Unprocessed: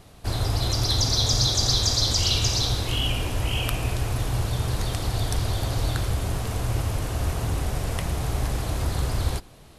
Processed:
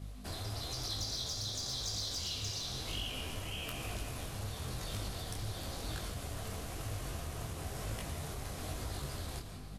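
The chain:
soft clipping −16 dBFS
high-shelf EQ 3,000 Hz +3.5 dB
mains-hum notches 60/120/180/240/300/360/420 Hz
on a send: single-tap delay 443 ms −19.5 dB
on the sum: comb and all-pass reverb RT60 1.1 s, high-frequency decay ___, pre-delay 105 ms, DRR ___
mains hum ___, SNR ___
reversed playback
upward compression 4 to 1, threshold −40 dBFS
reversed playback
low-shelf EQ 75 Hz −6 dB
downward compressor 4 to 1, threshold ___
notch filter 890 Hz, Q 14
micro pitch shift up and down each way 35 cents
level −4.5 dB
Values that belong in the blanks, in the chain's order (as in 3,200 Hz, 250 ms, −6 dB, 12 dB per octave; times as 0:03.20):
0.7×, 10 dB, 50 Hz, 11 dB, −29 dBFS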